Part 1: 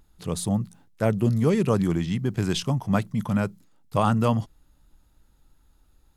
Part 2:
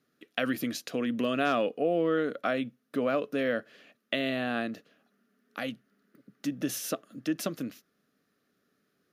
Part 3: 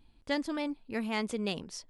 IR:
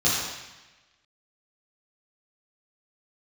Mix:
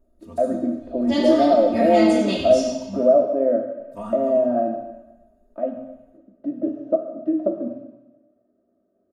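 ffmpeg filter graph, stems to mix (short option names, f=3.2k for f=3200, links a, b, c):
-filter_complex "[0:a]equalizer=f=3.8k:t=o:w=1.3:g=-7.5,aecho=1:1:4.3:0.74,volume=-18dB,asplit=3[a][b][c];[a]atrim=end=3.18,asetpts=PTS-STARTPTS,afade=t=out:st=3.176:d=0.004:c=hsin[d];[b]atrim=start=3.18:end=3.79,asetpts=PTS-STARTPTS,volume=0[e];[c]atrim=start=3.79,asetpts=PTS-STARTPTS,afade=t=in:d=0.004:c=hsin[f];[d][e][f]concat=n=3:v=0:a=1,asplit=2[g][h];[h]volume=-17.5dB[i];[1:a]deesser=0.85,lowpass=f=630:t=q:w=4.9,volume=-3.5dB,asplit=3[j][k][l];[k]volume=-17dB[m];[2:a]adelay=800,volume=-2dB,asplit=2[n][o];[o]volume=-6.5dB[p];[l]apad=whole_len=272087[q];[g][q]sidechaincompress=threshold=-40dB:ratio=8:attack=5.1:release=129[r];[3:a]atrim=start_sample=2205[s];[i][m][p]amix=inputs=3:normalize=0[t];[t][s]afir=irnorm=-1:irlink=0[u];[r][j][n][u]amix=inputs=4:normalize=0,lowshelf=f=140:g=6,aecho=1:1:3.2:0.86"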